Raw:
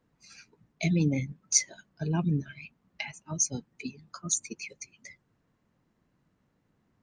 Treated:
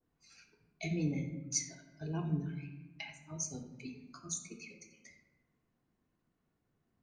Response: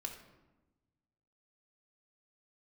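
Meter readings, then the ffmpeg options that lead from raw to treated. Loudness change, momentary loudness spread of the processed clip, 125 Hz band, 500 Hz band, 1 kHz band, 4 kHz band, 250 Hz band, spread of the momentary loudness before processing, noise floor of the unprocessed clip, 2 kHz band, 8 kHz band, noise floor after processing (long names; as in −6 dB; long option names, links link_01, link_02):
−9.5 dB, 14 LU, −8.0 dB, −7.0 dB, −8.0 dB, −10.0 dB, −7.5 dB, 18 LU, −74 dBFS, −9.0 dB, −10.5 dB, −81 dBFS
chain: -filter_complex "[1:a]atrim=start_sample=2205[link_01];[0:a][link_01]afir=irnorm=-1:irlink=0,adynamicequalizer=threshold=0.00251:dfrequency=1600:dqfactor=0.7:tfrequency=1600:tqfactor=0.7:attack=5:release=100:ratio=0.375:range=2.5:mode=cutabove:tftype=highshelf,volume=-6dB"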